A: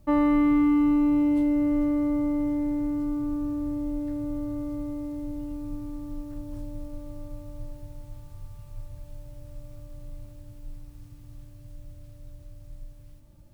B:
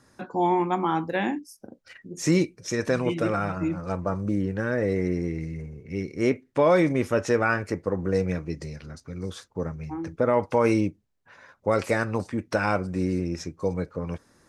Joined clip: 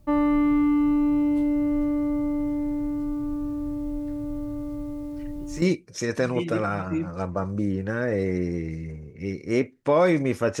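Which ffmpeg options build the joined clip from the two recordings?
-filter_complex "[1:a]asplit=2[s0][s1];[0:a]apad=whole_dur=10.6,atrim=end=10.6,atrim=end=5.622[s2];[s1]atrim=start=2.318:end=7.3[s3];[s0]atrim=start=1.72:end=2.32,asetpts=PTS-STARTPTS,volume=0.299,afade=t=in:d=0.004:c=hsin,afade=t=out:st=0.596:d=0.004:c=hsin,adelay=5020[s4];[s2][s3]acrossfade=d=0.004:c1=hsin:c2=hsin[s5];[s5][s4]amix=inputs=2:normalize=0"

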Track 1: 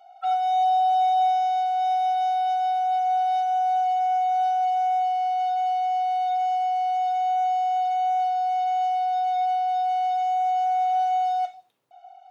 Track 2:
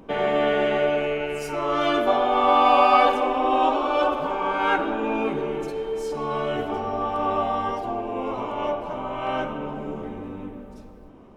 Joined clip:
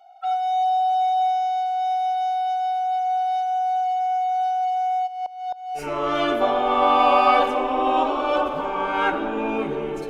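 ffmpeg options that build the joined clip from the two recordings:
-filter_complex "[0:a]asplit=3[s0][s1][s2];[s0]afade=t=out:st=5.06:d=0.02[s3];[s1]aeval=exprs='val(0)*pow(10,-19*if(lt(mod(-3.8*n/s,1),2*abs(-3.8)/1000),1-mod(-3.8*n/s,1)/(2*abs(-3.8)/1000),(mod(-3.8*n/s,1)-2*abs(-3.8)/1000)/(1-2*abs(-3.8)/1000))/20)':c=same,afade=t=in:st=5.06:d=0.02,afade=t=out:st=5.82:d=0.02[s4];[s2]afade=t=in:st=5.82:d=0.02[s5];[s3][s4][s5]amix=inputs=3:normalize=0,apad=whole_dur=10.09,atrim=end=10.09,atrim=end=5.82,asetpts=PTS-STARTPTS[s6];[1:a]atrim=start=1.4:end=5.75,asetpts=PTS-STARTPTS[s7];[s6][s7]acrossfade=d=0.08:c1=tri:c2=tri"

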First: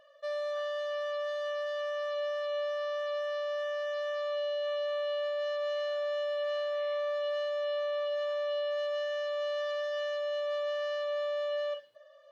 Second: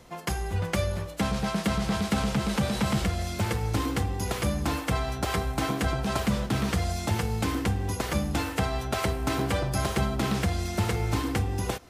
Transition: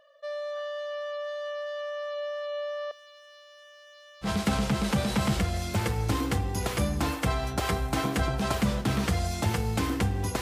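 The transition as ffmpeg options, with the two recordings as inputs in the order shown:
-filter_complex "[0:a]asettb=1/sr,asplit=3[s0][s1][s2];[s0]atrim=end=2.914[s3];[s1]atrim=start=2.91:end=4.29,asetpts=PTS-STARTPTS,afade=t=in:d=0.004:c=qsin,afade=t=out:st=1.376:d=0.004:c=qsin,aderivative[s4];[s2]atrim=start=4.286[s5];[s3][s4]acrossfade=d=0.004:c1=hsin:c2=qsin[s6];[s6][s5]acrossfade=d=0.004:c1=qsin:c2=hsin,apad=whole_dur=10.41,atrim=end=10.41,atrim=end=4.29,asetpts=PTS-STARTPTS[s7];[1:a]atrim=start=1.86:end=8.06,asetpts=PTS-STARTPTS[s8];[s7][s8]acrossfade=d=0.08:c1=tri:c2=tri"

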